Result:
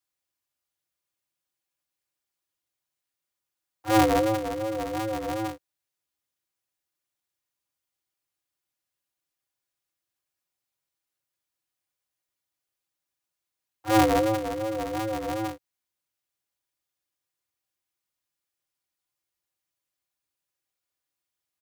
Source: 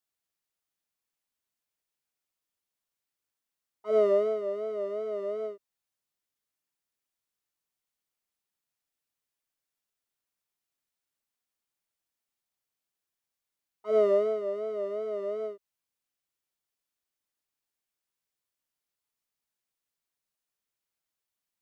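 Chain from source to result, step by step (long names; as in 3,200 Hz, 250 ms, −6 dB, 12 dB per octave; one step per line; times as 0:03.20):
comb filter 4.5 ms
ring modulator with a square carrier 110 Hz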